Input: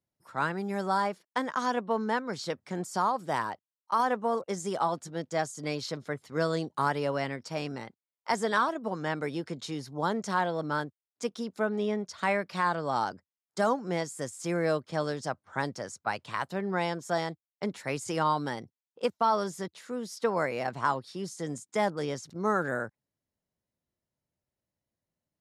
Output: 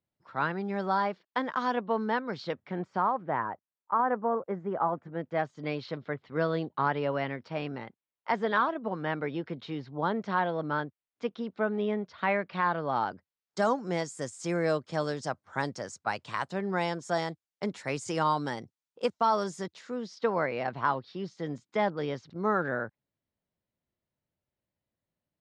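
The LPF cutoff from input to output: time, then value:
LPF 24 dB/oct
2.36 s 4300 Hz
3.5 s 1800 Hz
4.9 s 1800 Hz
5.59 s 3500 Hz
13.07 s 3500 Hz
13.71 s 8300 Hz
19.57 s 8300 Hz
20.32 s 4100 Hz

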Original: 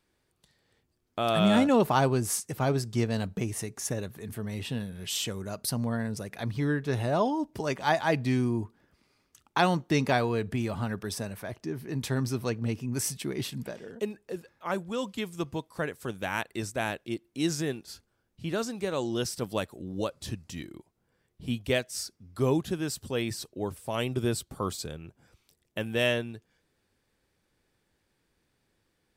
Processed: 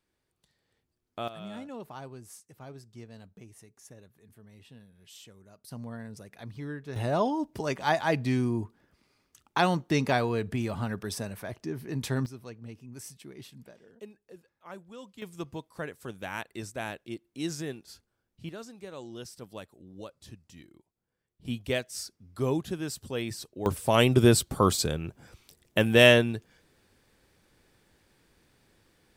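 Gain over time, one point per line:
-6 dB
from 1.28 s -19 dB
from 5.71 s -10 dB
from 6.96 s -0.5 dB
from 12.26 s -13.5 dB
from 15.22 s -5 dB
from 18.49 s -12 dB
from 21.45 s -2.5 dB
from 23.66 s +9 dB

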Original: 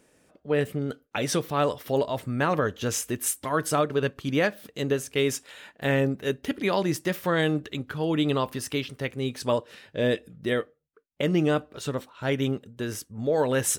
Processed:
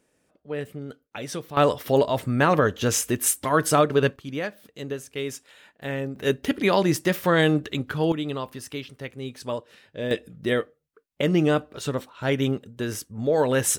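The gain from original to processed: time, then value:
-6.5 dB
from 1.57 s +5 dB
from 4.16 s -6 dB
from 6.16 s +4.5 dB
from 8.12 s -5 dB
from 10.11 s +2.5 dB

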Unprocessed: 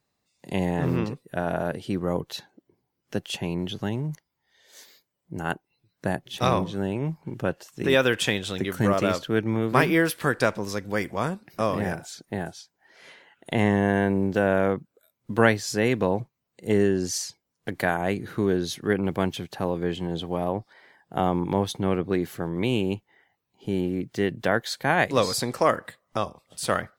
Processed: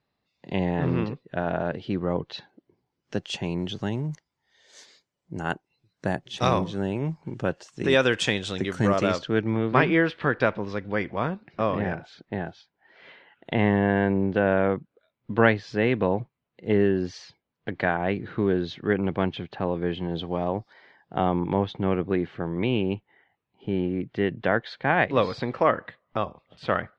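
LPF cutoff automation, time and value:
LPF 24 dB/oct
2.36 s 4300 Hz
3.48 s 7600 Hz
8.96 s 7600 Hz
9.85 s 3600 Hz
19.89 s 3600 Hz
20.58 s 6300 Hz
21.6 s 3300 Hz

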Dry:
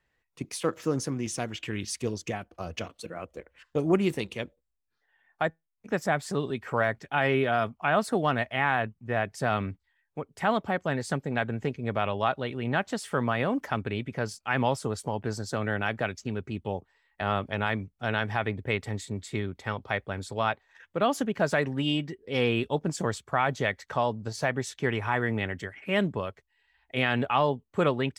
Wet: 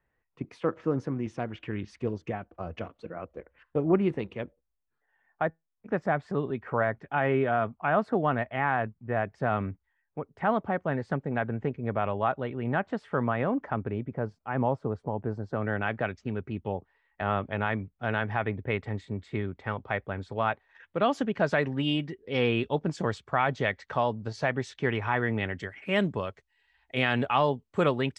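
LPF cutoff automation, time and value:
13.47 s 1700 Hz
14.07 s 1000 Hz
15.42 s 1000 Hz
15.82 s 2300 Hz
20.45 s 2300 Hz
20.97 s 4000 Hz
25.42 s 4000 Hz
25.87 s 8300 Hz

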